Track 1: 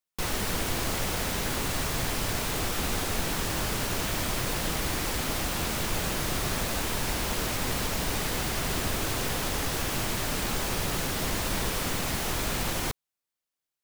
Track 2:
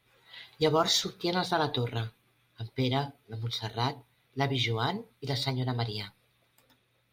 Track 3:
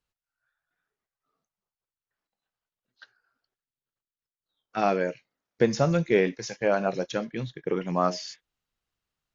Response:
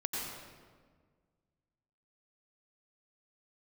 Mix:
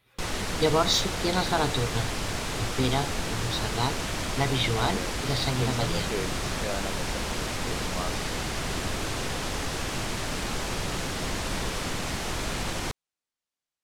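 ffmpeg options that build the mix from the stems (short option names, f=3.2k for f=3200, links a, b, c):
-filter_complex "[0:a]lowpass=8.5k,volume=-0.5dB[a];[1:a]volume=2dB[b];[2:a]volume=-11dB[c];[a][b][c]amix=inputs=3:normalize=0"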